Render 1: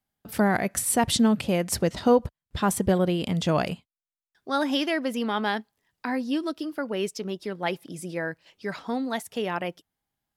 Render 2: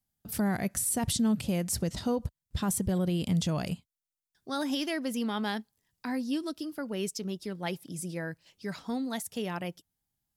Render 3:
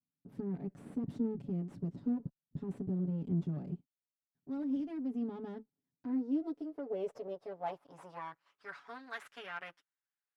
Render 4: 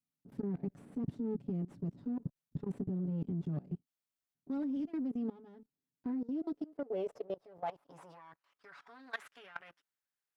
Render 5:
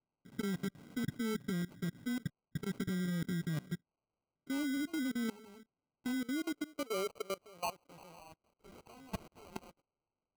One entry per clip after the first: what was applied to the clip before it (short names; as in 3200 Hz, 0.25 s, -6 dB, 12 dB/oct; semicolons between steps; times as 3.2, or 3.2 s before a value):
tone controls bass +10 dB, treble +11 dB; limiter -12.5 dBFS, peak gain reduction 10 dB; gain -8 dB
minimum comb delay 7.1 ms; band-pass sweep 220 Hz -> 1600 Hz, 5.65–8.94; gain +1 dB
level quantiser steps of 20 dB; gain +5 dB
sample-and-hold 25×